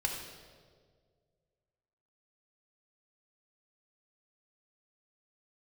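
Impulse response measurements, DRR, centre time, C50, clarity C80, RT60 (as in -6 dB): 0.0 dB, 54 ms, 3.0 dB, 5.0 dB, 1.8 s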